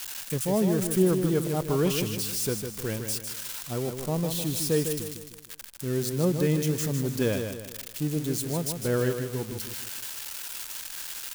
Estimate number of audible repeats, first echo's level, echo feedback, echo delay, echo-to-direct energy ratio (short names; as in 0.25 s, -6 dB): 4, -7.0 dB, 41%, 0.154 s, -6.0 dB